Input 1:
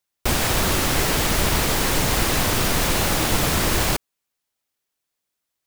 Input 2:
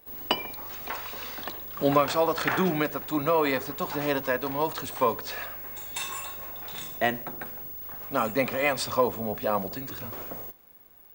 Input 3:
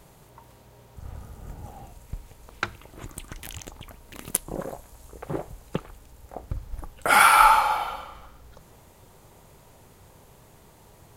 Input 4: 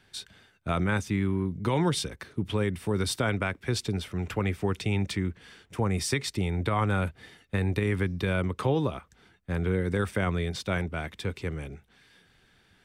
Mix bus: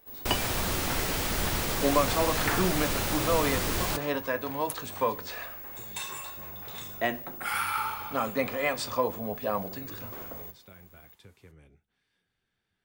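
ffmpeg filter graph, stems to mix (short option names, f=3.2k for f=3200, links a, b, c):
-filter_complex "[0:a]volume=-5dB[a];[1:a]volume=1dB[b];[2:a]highpass=1.1k,adelay=350,volume=-8.5dB[c];[3:a]acompressor=threshold=-30dB:ratio=6,volume=-14.5dB[d];[a][b][c][d]amix=inputs=4:normalize=0,flanger=delay=8.9:depth=3.2:regen=-68:speed=0.63:shape=triangular"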